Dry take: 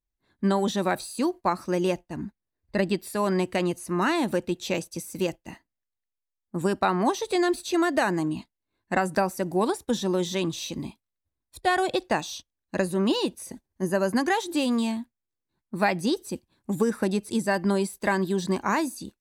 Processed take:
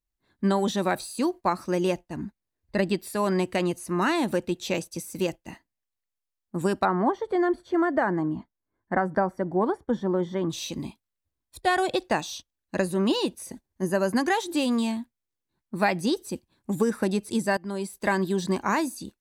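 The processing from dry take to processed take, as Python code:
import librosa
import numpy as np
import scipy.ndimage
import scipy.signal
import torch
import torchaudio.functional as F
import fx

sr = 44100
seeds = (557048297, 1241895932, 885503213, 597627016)

y = fx.savgol(x, sr, points=41, at=(6.84, 10.49), fade=0.02)
y = fx.edit(y, sr, fx.fade_in_from(start_s=17.57, length_s=0.51, floor_db=-18.5), tone=tone)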